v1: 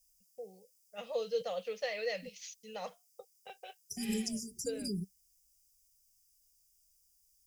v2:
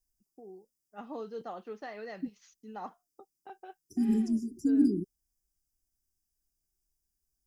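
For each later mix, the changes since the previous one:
master: remove FFT filter 190 Hz 0 dB, 320 Hz -30 dB, 500 Hz +15 dB, 810 Hz -6 dB, 1.5 kHz -3 dB, 2.3 kHz +14 dB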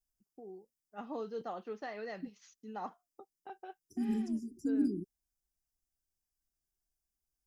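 second voice -6.5 dB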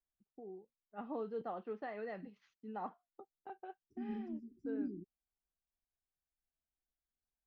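second voice -8.5 dB; master: add distance through air 380 m

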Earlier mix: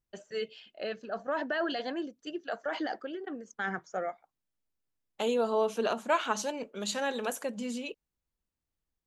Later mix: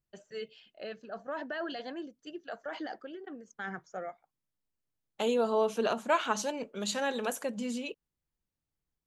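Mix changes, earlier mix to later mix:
first voice -5.5 dB; master: add peaking EQ 140 Hz +5 dB 0.74 oct

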